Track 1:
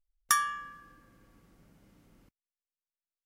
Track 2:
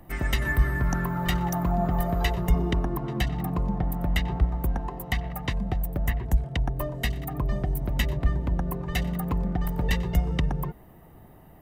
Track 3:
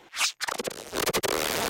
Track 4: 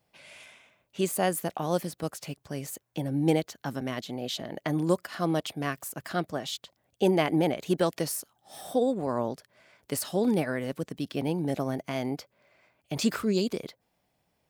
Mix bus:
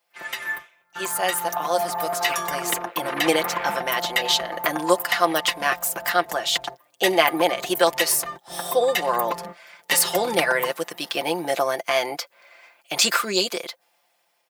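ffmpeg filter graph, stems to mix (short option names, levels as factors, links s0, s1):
-filter_complex "[0:a]adelay=2050,volume=0.237[s0];[1:a]volume=0.841[s1];[2:a]lowpass=f=2300:w=0.5412,lowpass=f=2300:w=1.3066,alimiter=limit=0.075:level=0:latency=1,adelay=2100,volume=0.447[s2];[3:a]volume=1.41,asplit=2[s3][s4];[s4]apad=whole_len=512124[s5];[s1][s5]sidechaingate=range=0.0251:threshold=0.00282:ratio=16:detection=peak[s6];[s0][s6][s2][s3]amix=inputs=4:normalize=0,highpass=750,aecho=1:1:5.8:0.64,dynaudnorm=f=800:g=5:m=3.76"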